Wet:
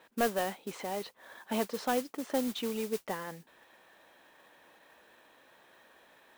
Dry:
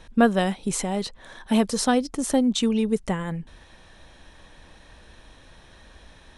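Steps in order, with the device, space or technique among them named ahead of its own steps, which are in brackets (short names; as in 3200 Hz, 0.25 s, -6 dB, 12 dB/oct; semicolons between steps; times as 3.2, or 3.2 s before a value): carbon microphone (BPF 380–2700 Hz; soft clip -14 dBFS, distortion -15 dB; modulation noise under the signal 12 dB); 1.37–2.48 resonant low shelf 110 Hz -7.5 dB, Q 1.5; gain -5.5 dB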